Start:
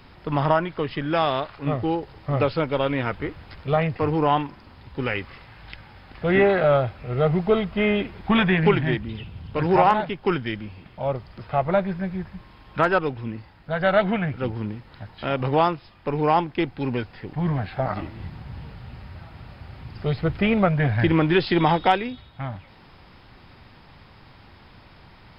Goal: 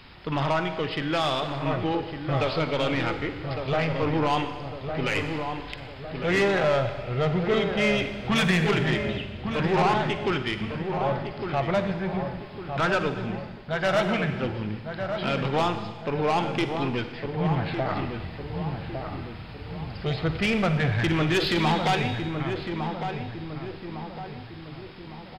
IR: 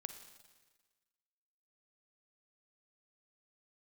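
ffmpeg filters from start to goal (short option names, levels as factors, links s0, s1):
-filter_complex "[0:a]equalizer=f=3300:t=o:w=1.9:g=7.5,asoftclip=type=tanh:threshold=0.141,asplit=2[s0][s1];[s1]adelay=1156,lowpass=f=1400:p=1,volume=0.501,asplit=2[s2][s3];[s3]adelay=1156,lowpass=f=1400:p=1,volume=0.52,asplit=2[s4][s5];[s5]adelay=1156,lowpass=f=1400:p=1,volume=0.52,asplit=2[s6][s7];[s7]adelay=1156,lowpass=f=1400:p=1,volume=0.52,asplit=2[s8][s9];[s9]adelay=1156,lowpass=f=1400:p=1,volume=0.52,asplit=2[s10][s11];[s11]adelay=1156,lowpass=f=1400:p=1,volume=0.52[s12];[s0][s2][s4][s6][s8][s10][s12]amix=inputs=7:normalize=0[s13];[1:a]atrim=start_sample=2205[s14];[s13][s14]afir=irnorm=-1:irlink=0,volume=1.26"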